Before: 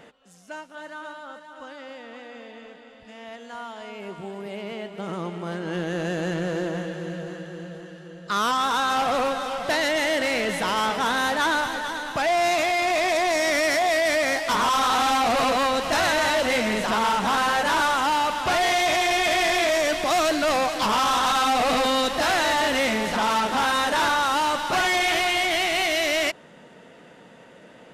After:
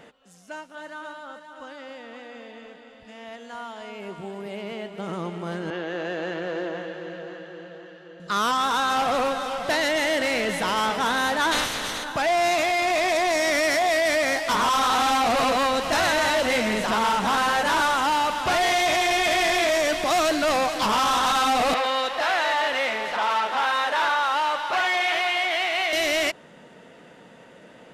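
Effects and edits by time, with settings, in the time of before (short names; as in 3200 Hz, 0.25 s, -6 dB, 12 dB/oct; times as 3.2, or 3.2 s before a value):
5.7–8.2 three-band isolator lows -16 dB, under 290 Hz, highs -21 dB, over 4700 Hz
11.51–12.03 spectral limiter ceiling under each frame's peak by 21 dB
21.74–25.93 three-band isolator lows -18 dB, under 450 Hz, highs -12 dB, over 4100 Hz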